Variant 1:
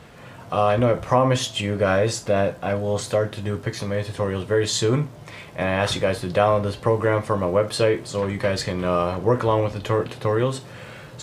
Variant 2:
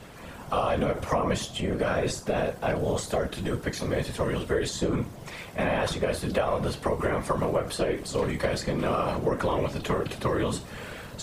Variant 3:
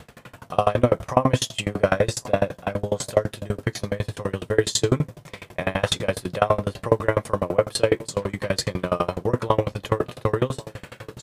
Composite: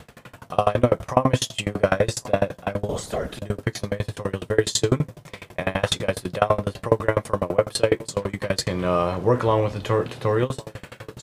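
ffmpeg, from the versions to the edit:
ffmpeg -i take0.wav -i take1.wav -i take2.wav -filter_complex "[2:a]asplit=3[link_01][link_02][link_03];[link_01]atrim=end=2.892[link_04];[1:a]atrim=start=2.888:end=3.392[link_05];[link_02]atrim=start=3.388:end=8.682[link_06];[0:a]atrim=start=8.678:end=10.432[link_07];[link_03]atrim=start=10.428[link_08];[link_04][link_05]acrossfade=duration=0.004:curve1=hsin:curve2=hsin[link_09];[link_09][link_06]acrossfade=duration=0.004:curve1=hsin:curve2=hsin[link_10];[link_10][link_07]acrossfade=duration=0.004:curve1=hsin:curve2=hsin[link_11];[link_11][link_08]acrossfade=duration=0.004:curve1=hsin:curve2=hsin" out.wav

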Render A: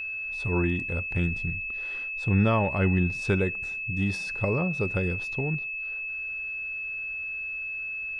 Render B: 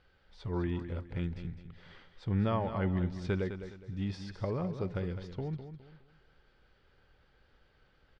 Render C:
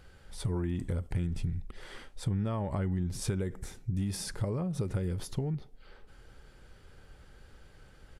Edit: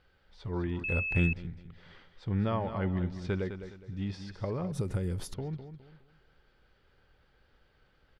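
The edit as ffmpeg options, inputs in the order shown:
ffmpeg -i take0.wav -i take1.wav -i take2.wav -filter_complex "[1:a]asplit=3[link_01][link_02][link_03];[link_01]atrim=end=0.842[link_04];[0:a]atrim=start=0.838:end=1.332[link_05];[link_02]atrim=start=1.328:end=4.722[link_06];[2:a]atrim=start=4.718:end=5.342[link_07];[link_03]atrim=start=5.338[link_08];[link_04][link_05]acrossfade=duration=0.004:curve1=hsin:curve2=hsin[link_09];[link_09][link_06]acrossfade=duration=0.004:curve1=hsin:curve2=hsin[link_10];[link_10][link_07]acrossfade=duration=0.004:curve1=hsin:curve2=hsin[link_11];[link_11][link_08]acrossfade=duration=0.004:curve1=hsin:curve2=hsin" out.wav

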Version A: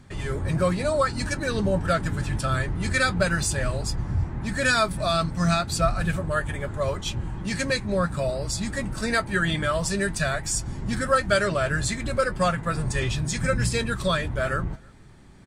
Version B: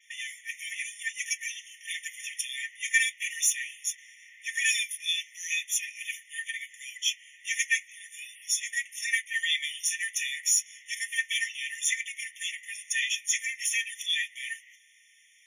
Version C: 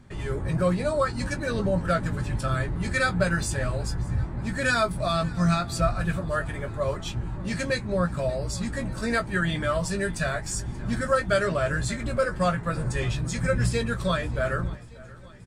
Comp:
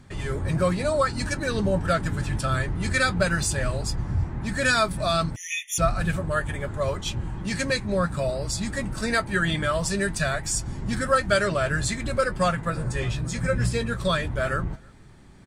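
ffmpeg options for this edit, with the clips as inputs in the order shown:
ffmpeg -i take0.wav -i take1.wav -i take2.wav -filter_complex "[0:a]asplit=3[link_01][link_02][link_03];[link_01]atrim=end=5.362[link_04];[1:a]atrim=start=5.358:end=5.782[link_05];[link_02]atrim=start=5.778:end=12.702[link_06];[2:a]atrim=start=12.698:end=14.052[link_07];[link_03]atrim=start=14.048[link_08];[link_04][link_05]acrossfade=duration=0.004:curve1=hsin:curve2=hsin[link_09];[link_09][link_06]acrossfade=duration=0.004:curve1=hsin:curve2=hsin[link_10];[link_10][link_07]acrossfade=duration=0.004:curve1=hsin:curve2=hsin[link_11];[link_11][link_08]acrossfade=duration=0.004:curve1=hsin:curve2=hsin" out.wav

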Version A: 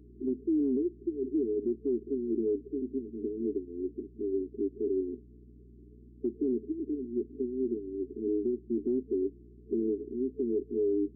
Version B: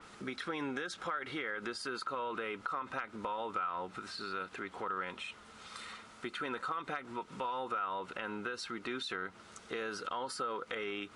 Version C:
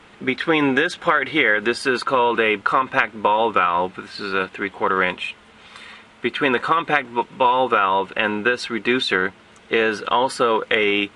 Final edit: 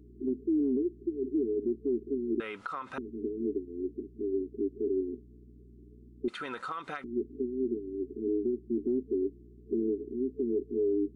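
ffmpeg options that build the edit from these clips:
ffmpeg -i take0.wav -i take1.wav -filter_complex "[1:a]asplit=2[link_01][link_02];[0:a]asplit=3[link_03][link_04][link_05];[link_03]atrim=end=2.402[link_06];[link_01]atrim=start=2.398:end=2.982[link_07];[link_04]atrim=start=2.978:end=6.282[link_08];[link_02]atrim=start=6.278:end=7.042[link_09];[link_05]atrim=start=7.038[link_10];[link_06][link_07]acrossfade=duration=0.004:curve1=hsin:curve2=hsin[link_11];[link_11][link_08]acrossfade=duration=0.004:curve1=hsin:curve2=hsin[link_12];[link_12][link_09]acrossfade=duration=0.004:curve1=hsin:curve2=hsin[link_13];[link_13][link_10]acrossfade=duration=0.004:curve1=hsin:curve2=hsin" out.wav

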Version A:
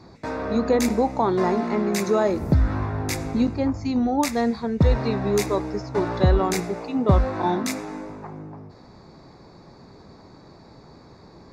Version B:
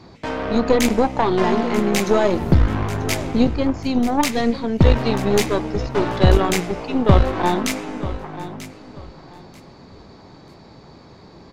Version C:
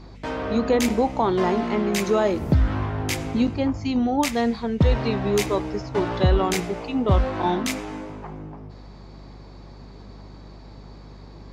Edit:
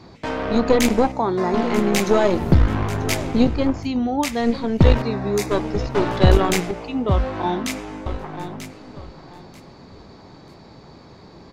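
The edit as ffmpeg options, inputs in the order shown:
ffmpeg -i take0.wav -i take1.wav -i take2.wav -filter_complex "[0:a]asplit=2[link_01][link_02];[2:a]asplit=2[link_03][link_04];[1:a]asplit=5[link_05][link_06][link_07][link_08][link_09];[link_05]atrim=end=1.122[link_10];[link_01]atrim=start=1.118:end=1.542[link_11];[link_06]atrim=start=1.538:end=3.89[link_12];[link_03]atrim=start=3.79:end=4.49[link_13];[link_07]atrim=start=4.39:end=5.022[link_14];[link_02]atrim=start=5.018:end=5.512[link_15];[link_08]atrim=start=5.508:end=6.712[link_16];[link_04]atrim=start=6.708:end=8.062[link_17];[link_09]atrim=start=8.058[link_18];[link_10][link_11]acrossfade=duration=0.004:curve1=hsin:curve2=hsin[link_19];[link_19][link_12]acrossfade=duration=0.004:curve1=hsin:curve2=hsin[link_20];[link_20][link_13]acrossfade=duration=0.1:curve1=tri:curve2=tri[link_21];[link_21][link_14]acrossfade=duration=0.1:curve1=tri:curve2=tri[link_22];[link_22][link_15]acrossfade=duration=0.004:curve1=hsin:curve2=hsin[link_23];[link_23][link_16]acrossfade=duration=0.004:curve1=hsin:curve2=hsin[link_24];[link_24][link_17]acrossfade=duration=0.004:curve1=hsin:curve2=hsin[link_25];[link_25][link_18]acrossfade=duration=0.004:curve1=hsin:curve2=hsin" out.wav

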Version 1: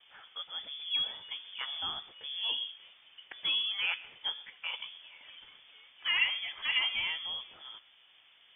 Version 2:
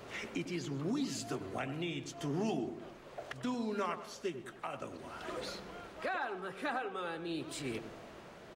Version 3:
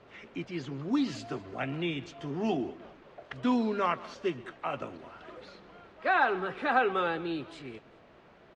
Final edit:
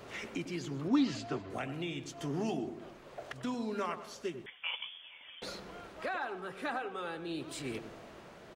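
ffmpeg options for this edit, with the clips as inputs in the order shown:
ffmpeg -i take0.wav -i take1.wav -i take2.wav -filter_complex "[1:a]asplit=3[link_01][link_02][link_03];[link_01]atrim=end=0.882[link_04];[2:a]atrim=start=0.878:end=1.502[link_05];[link_02]atrim=start=1.498:end=4.462[link_06];[0:a]atrim=start=4.458:end=5.422[link_07];[link_03]atrim=start=5.418[link_08];[link_04][link_05]acrossfade=duration=0.004:curve1=hsin:curve2=hsin[link_09];[link_09][link_06]acrossfade=duration=0.004:curve1=hsin:curve2=hsin[link_10];[link_10][link_07]acrossfade=duration=0.004:curve1=hsin:curve2=hsin[link_11];[link_11][link_08]acrossfade=duration=0.004:curve1=hsin:curve2=hsin" out.wav

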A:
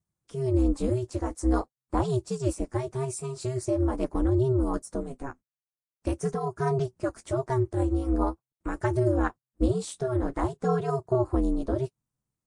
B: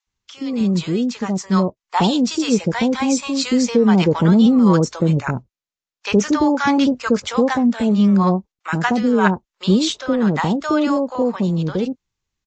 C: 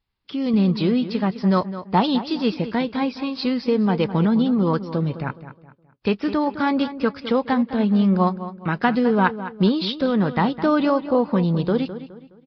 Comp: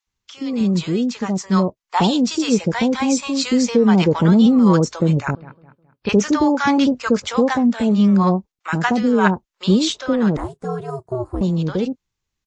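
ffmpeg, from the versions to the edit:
ffmpeg -i take0.wav -i take1.wav -i take2.wav -filter_complex "[1:a]asplit=3[link_01][link_02][link_03];[link_01]atrim=end=5.352[link_04];[2:a]atrim=start=5.348:end=6.092[link_05];[link_02]atrim=start=6.088:end=10.372[link_06];[0:a]atrim=start=10.368:end=11.412[link_07];[link_03]atrim=start=11.408[link_08];[link_04][link_05]acrossfade=duration=0.004:curve1=hsin:curve2=hsin[link_09];[link_09][link_06]acrossfade=duration=0.004:curve1=hsin:curve2=hsin[link_10];[link_10][link_07]acrossfade=duration=0.004:curve1=hsin:curve2=hsin[link_11];[link_11][link_08]acrossfade=duration=0.004:curve1=hsin:curve2=hsin" out.wav

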